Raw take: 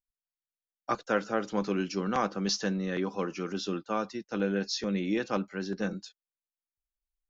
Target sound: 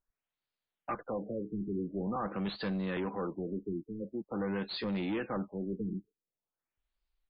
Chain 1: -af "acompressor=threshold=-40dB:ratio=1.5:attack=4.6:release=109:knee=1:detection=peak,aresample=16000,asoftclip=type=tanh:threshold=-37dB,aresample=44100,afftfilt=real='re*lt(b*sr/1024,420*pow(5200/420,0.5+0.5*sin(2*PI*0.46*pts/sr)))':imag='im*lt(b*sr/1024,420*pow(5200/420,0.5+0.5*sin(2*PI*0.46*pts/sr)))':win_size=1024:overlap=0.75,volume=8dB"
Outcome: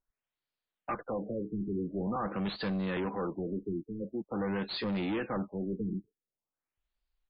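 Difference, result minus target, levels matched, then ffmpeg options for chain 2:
downward compressor: peak gain reduction −3.5 dB
-af "acompressor=threshold=-50dB:ratio=1.5:attack=4.6:release=109:knee=1:detection=peak,aresample=16000,asoftclip=type=tanh:threshold=-37dB,aresample=44100,afftfilt=real='re*lt(b*sr/1024,420*pow(5200/420,0.5+0.5*sin(2*PI*0.46*pts/sr)))':imag='im*lt(b*sr/1024,420*pow(5200/420,0.5+0.5*sin(2*PI*0.46*pts/sr)))':win_size=1024:overlap=0.75,volume=8dB"

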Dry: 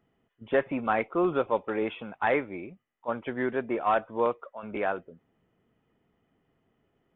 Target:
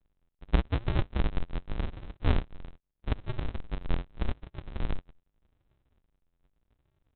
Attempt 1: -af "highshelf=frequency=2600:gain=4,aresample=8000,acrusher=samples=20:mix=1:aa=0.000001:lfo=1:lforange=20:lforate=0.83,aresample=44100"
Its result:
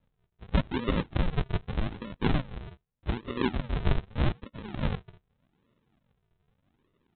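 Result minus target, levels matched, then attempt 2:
sample-and-hold swept by an LFO: distortion −8 dB
-af "highshelf=frequency=2600:gain=4,aresample=8000,acrusher=samples=63:mix=1:aa=0.000001:lfo=1:lforange=63:lforate=0.83,aresample=44100"

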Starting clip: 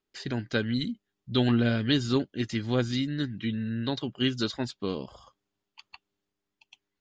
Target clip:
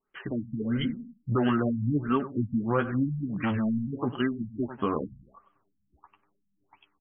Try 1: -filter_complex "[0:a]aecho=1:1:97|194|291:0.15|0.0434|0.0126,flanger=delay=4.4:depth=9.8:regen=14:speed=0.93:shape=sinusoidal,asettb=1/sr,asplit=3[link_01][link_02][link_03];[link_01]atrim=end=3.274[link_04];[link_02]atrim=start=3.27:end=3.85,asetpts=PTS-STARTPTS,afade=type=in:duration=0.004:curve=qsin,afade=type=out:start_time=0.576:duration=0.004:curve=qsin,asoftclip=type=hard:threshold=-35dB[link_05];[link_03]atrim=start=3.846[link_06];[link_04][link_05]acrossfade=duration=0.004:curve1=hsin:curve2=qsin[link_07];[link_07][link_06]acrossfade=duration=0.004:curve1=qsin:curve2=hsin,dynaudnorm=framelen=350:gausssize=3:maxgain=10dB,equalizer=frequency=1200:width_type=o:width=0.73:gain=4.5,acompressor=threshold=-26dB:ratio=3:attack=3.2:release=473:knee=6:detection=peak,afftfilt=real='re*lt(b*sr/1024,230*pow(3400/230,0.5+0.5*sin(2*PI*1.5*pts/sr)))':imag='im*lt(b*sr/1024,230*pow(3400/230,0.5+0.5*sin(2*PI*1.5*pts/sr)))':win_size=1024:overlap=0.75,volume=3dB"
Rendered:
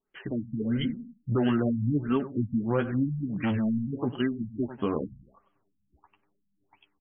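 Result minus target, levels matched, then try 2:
1,000 Hz band −5.0 dB
-filter_complex "[0:a]aecho=1:1:97|194|291:0.15|0.0434|0.0126,flanger=delay=4.4:depth=9.8:regen=14:speed=0.93:shape=sinusoidal,asettb=1/sr,asplit=3[link_01][link_02][link_03];[link_01]atrim=end=3.274[link_04];[link_02]atrim=start=3.27:end=3.85,asetpts=PTS-STARTPTS,afade=type=in:duration=0.004:curve=qsin,afade=type=out:start_time=0.576:duration=0.004:curve=qsin,asoftclip=type=hard:threshold=-35dB[link_05];[link_03]atrim=start=3.846[link_06];[link_04][link_05]acrossfade=duration=0.004:curve1=hsin:curve2=qsin[link_07];[link_07][link_06]acrossfade=duration=0.004:curve1=qsin:curve2=hsin,dynaudnorm=framelen=350:gausssize=3:maxgain=10dB,equalizer=frequency=1200:width_type=o:width=0.73:gain=12.5,acompressor=threshold=-26dB:ratio=3:attack=3.2:release=473:knee=6:detection=peak,afftfilt=real='re*lt(b*sr/1024,230*pow(3400/230,0.5+0.5*sin(2*PI*1.5*pts/sr)))':imag='im*lt(b*sr/1024,230*pow(3400/230,0.5+0.5*sin(2*PI*1.5*pts/sr)))':win_size=1024:overlap=0.75,volume=3dB"

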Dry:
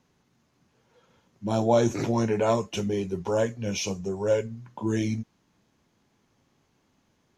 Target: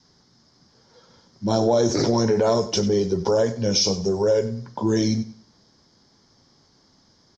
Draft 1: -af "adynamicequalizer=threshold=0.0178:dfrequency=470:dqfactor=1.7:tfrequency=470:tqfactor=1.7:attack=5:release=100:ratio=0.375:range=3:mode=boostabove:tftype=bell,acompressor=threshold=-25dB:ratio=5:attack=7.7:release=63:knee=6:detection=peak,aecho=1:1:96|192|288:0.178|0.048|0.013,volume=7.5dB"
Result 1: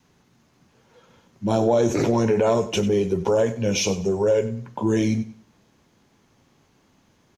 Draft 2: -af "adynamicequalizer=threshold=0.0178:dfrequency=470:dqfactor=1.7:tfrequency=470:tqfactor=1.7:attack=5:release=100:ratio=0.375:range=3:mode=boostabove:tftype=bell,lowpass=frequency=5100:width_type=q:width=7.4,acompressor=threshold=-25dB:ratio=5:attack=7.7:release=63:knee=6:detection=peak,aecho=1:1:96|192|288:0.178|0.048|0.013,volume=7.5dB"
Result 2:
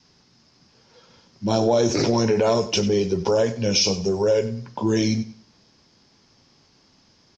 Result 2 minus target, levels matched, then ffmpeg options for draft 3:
2,000 Hz band +4.0 dB
-af "adynamicequalizer=threshold=0.0178:dfrequency=470:dqfactor=1.7:tfrequency=470:tqfactor=1.7:attack=5:release=100:ratio=0.375:range=3:mode=boostabove:tftype=bell,lowpass=frequency=5100:width_type=q:width=7.4,acompressor=threshold=-25dB:ratio=5:attack=7.7:release=63:knee=6:detection=peak,equalizer=frequency=2600:width_type=o:width=0.37:gain=-15,aecho=1:1:96|192|288:0.178|0.048|0.013,volume=7.5dB"

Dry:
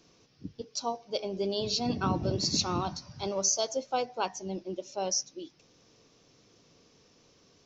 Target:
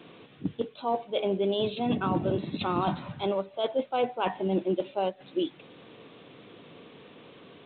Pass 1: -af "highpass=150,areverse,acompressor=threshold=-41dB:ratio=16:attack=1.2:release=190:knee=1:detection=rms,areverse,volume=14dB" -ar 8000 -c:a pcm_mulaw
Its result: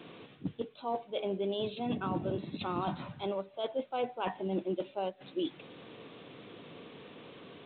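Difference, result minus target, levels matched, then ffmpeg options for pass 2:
downward compressor: peak gain reduction +6.5 dB
-af "highpass=150,areverse,acompressor=threshold=-34dB:ratio=16:attack=1.2:release=190:knee=1:detection=rms,areverse,volume=14dB" -ar 8000 -c:a pcm_mulaw

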